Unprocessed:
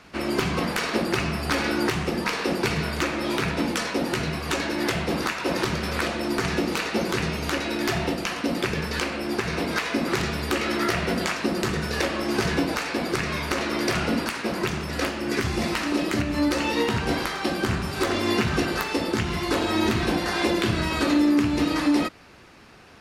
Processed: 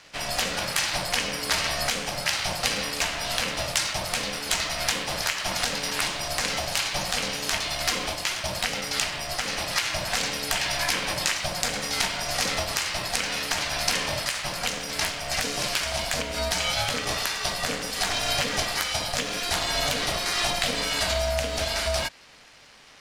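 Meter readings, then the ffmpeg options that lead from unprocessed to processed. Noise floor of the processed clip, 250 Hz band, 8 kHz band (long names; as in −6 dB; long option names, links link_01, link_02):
−34 dBFS, −15.0 dB, +8.5 dB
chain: -af "aeval=exprs='val(0)*sin(2*PI*360*n/s)':channel_layout=same,crystalizer=i=8.5:c=0,adynamicsmooth=sensitivity=8:basefreq=6200,volume=-5.5dB"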